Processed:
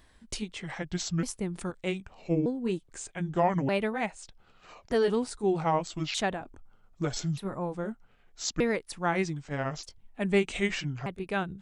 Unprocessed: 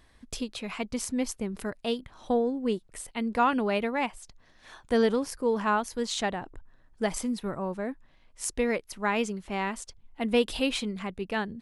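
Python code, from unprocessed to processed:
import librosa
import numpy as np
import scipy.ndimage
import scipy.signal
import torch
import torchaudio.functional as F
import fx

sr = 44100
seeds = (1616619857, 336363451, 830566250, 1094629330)

y = fx.pitch_ramps(x, sr, semitones=-7.5, every_ms=1229)
y = fx.high_shelf(y, sr, hz=9100.0, db=4.5)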